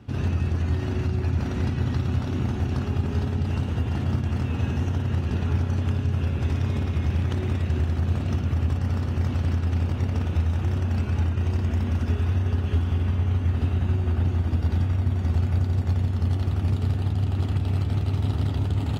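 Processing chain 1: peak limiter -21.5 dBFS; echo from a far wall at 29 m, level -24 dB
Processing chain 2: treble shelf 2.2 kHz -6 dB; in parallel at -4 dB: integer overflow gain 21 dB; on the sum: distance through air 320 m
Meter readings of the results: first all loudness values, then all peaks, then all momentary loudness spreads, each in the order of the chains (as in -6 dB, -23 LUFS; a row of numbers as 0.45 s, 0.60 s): -29.5 LUFS, -24.0 LUFS; -21.0 dBFS, -12.5 dBFS; 1 LU, 1 LU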